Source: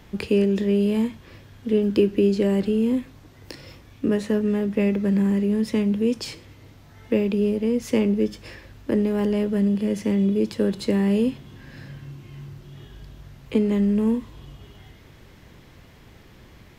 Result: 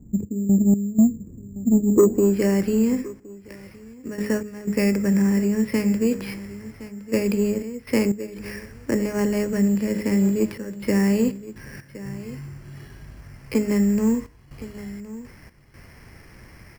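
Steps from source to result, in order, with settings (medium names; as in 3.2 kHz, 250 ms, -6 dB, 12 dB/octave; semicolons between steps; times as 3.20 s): bass shelf 200 Hz +3.5 dB; de-hum 52.28 Hz, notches 10; low-pass sweep 240 Hz -> 2.1 kHz, 1.85–2.36 s; trance gate "x.x.xxxxxxxxx.x" 61 bpm -12 dB; saturation -7 dBFS, distortion -22 dB; on a send: delay 1066 ms -16 dB; on the sum: careless resampling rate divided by 6×, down filtered, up hold; 2.90–4.06 s: upward expansion 1.5:1, over -33 dBFS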